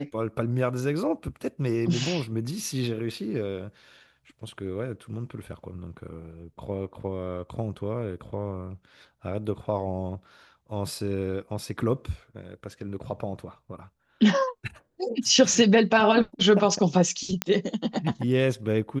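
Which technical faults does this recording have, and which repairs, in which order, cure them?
17.42 pop -7 dBFS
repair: de-click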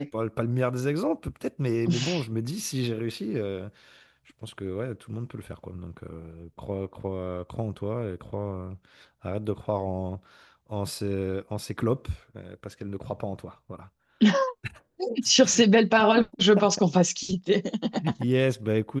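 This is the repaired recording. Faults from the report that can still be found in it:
none

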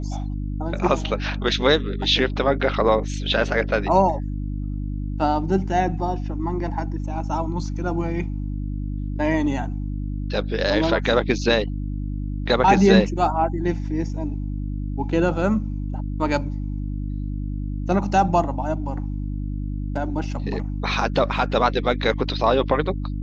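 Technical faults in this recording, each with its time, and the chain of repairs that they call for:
hum 50 Hz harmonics 6 -27 dBFS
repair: de-hum 50 Hz, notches 6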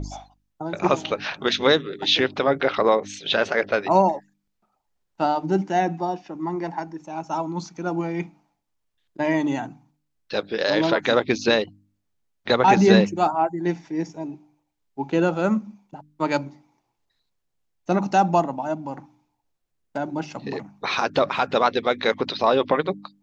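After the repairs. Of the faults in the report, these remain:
none

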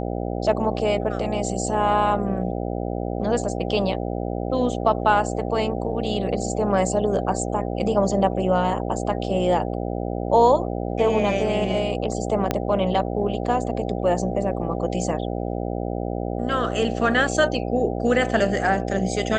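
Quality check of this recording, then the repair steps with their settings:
buzz 60 Hz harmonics 13 -27 dBFS
12.51 pop -7 dBFS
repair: de-click; de-hum 60 Hz, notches 13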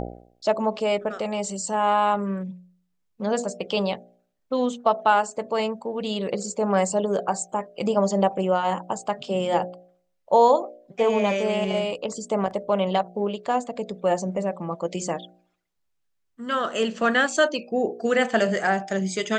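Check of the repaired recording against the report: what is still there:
12.51 pop

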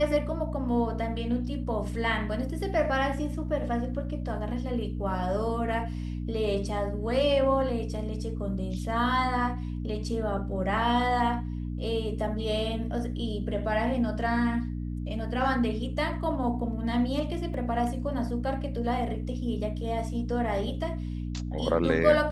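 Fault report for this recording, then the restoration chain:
hum 60 Hz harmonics 5 -33 dBFS
17.54 gap 3 ms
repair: de-hum 60 Hz, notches 5; interpolate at 17.54, 3 ms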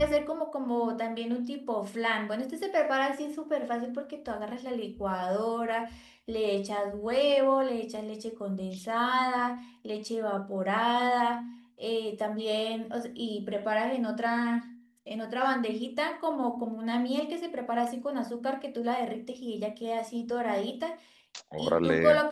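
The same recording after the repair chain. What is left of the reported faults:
none

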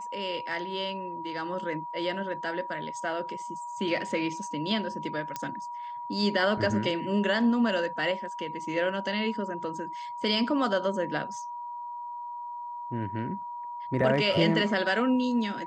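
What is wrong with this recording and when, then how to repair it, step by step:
tone 960 Hz -35 dBFS
5.36 pop -17 dBFS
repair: de-click; notch 960 Hz, Q 30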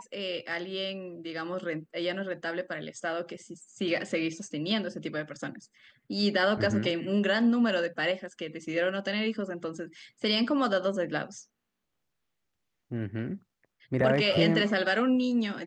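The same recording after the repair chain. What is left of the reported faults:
none

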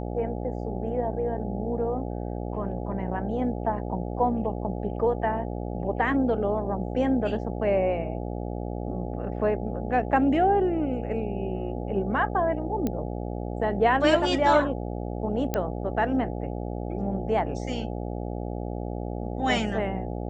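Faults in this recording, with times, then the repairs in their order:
buzz 60 Hz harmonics 14 -32 dBFS
12.87 pop -15 dBFS
15.54 pop -12 dBFS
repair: de-click; de-hum 60 Hz, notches 14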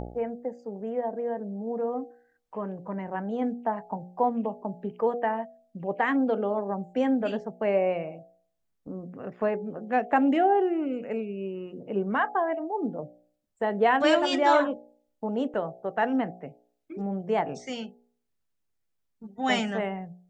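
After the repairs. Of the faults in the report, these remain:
none

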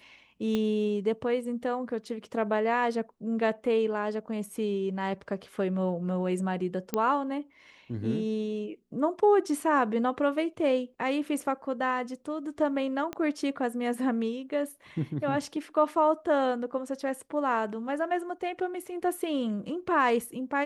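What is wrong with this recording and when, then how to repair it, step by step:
0.55 pop -17 dBFS
6.94 pop -14 dBFS
13.13 pop -20 dBFS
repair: de-click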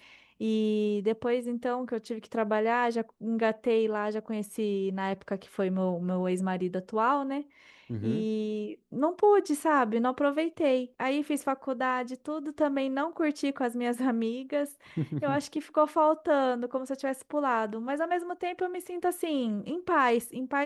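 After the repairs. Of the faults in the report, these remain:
0.55 pop
13.13 pop

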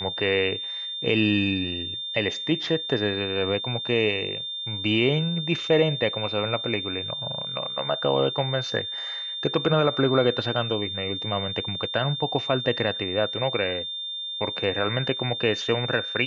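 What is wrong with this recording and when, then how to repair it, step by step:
tone 3600 Hz -30 dBFS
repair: notch 3600 Hz, Q 30

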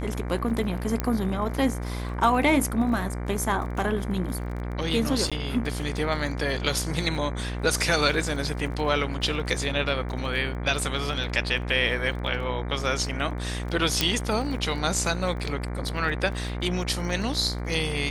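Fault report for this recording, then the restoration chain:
buzz 60 Hz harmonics 39 -31 dBFS
crackle 23/s -34 dBFS
1 pop -11 dBFS
5.3–5.32 gap 16 ms
14.01 pop -5 dBFS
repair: de-click; de-hum 60 Hz, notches 39; interpolate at 5.3, 16 ms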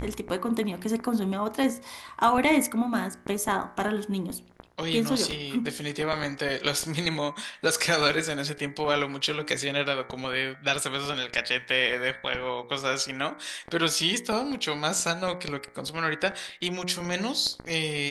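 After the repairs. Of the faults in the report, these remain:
none

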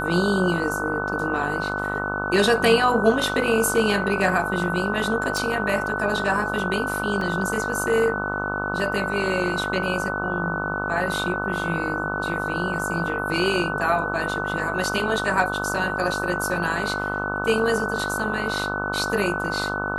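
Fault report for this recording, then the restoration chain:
buzz 50 Hz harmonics 27 -29 dBFS
tone 1500 Hz -27 dBFS
5.37 pop
7.21 gap 2.8 ms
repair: de-click; de-hum 50 Hz, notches 27; notch 1500 Hz, Q 30; interpolate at 7.21, 2.8 ms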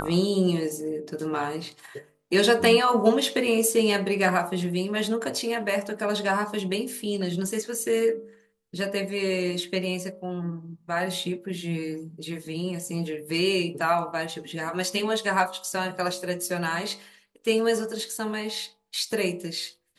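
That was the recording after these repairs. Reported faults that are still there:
none

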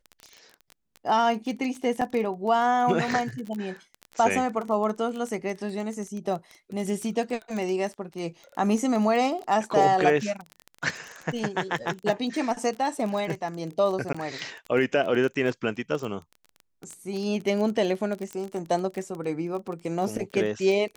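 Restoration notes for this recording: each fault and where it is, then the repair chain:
crackle 20/s -30 dBFS
2.01–2.02 gap 5.4 ms
14.13–14.14 gap 15 ms
18.33 pop -21 dBFS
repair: de-click; interpolate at 2.01, 5.4 ms; interpolate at 14.13, 15 ms

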